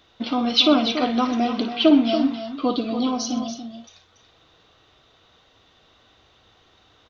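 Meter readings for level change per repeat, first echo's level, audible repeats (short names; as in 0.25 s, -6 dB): no steady repeat, -11.0 dB, 4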